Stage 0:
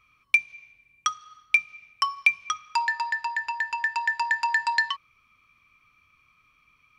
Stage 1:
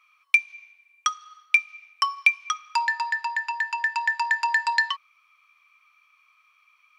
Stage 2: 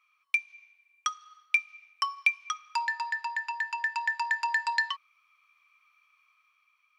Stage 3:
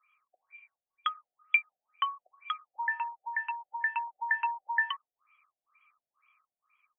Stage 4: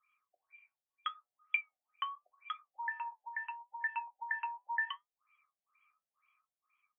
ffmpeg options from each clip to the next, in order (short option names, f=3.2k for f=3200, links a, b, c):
-af "highpass=f=730:w=0.5412,highpass=f=730:w=1.3066,volume=1.5dB"
-af "dynaudnorm=f=160:g=9:m=3.5dB,volume=-8.5dB"
-af "afftfilt=real='re*lt(b*sr/1024,750*pow(3400/750,0.5+0.5*sin(2*PI*2.1*pts/sr)))':imag='im*lt(b*sr/1024,750*pow(3400/750,0.5+0.5*sin(2*PI*2.1*pts/sr)))':win_size=1024:overlap=0.75"
-af "flanger=delay=8.2:depth=3.4:regen=62:speed=0.77:shape=triangular,volume=-2.5dB"